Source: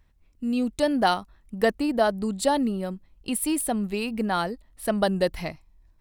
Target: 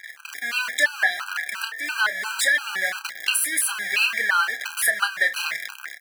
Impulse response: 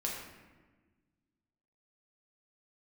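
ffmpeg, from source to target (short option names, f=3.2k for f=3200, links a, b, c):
-filter_complex "[0:a]aeval=exprs='val(0)+0.5*0.0398*sgn(val(0))':c=same,asplit=2[a][b];[1:a]atrim=start_sample=2205,asetrate=29547,aresample=44100[c];[b][c]afir=irnorm=-1:irlink=0,volume=-23dB[d];[a][d]amix=inputs=2:normalize=0,flanger=delay=5.9:depth=1.2:regen=62:speed=1.6:shape=triangular,highpass=f=1.7k:t=q:w=5.1,asplit=2[e][f];[f]asoftclip=type=tanh:threshold=-25dB,volume=-11.5dB[g];[e][g]amix=inputs=2:normalize=0,acompressor=threshold=-29dB:ratio=5,asplit=2[h][i];[i]adelay=31,volume=-10dB[j];[h][j]amix=inputs=2:normalize=0,dynaudnorm=f=130:g=5:m=15dB,afftfilt=real='re*gt(sin(2*PI*2.9*pts/sr)*(1-2*mod(floor(b*sr/1024/800),2)),0)':imag='im*gt(sin(2*PI*2.9*pts/sr)*(1-2*mod(floor(b*sr/1024/800),2)),0)':win_size=1024:overlap=0.75,volume=-1.5dB"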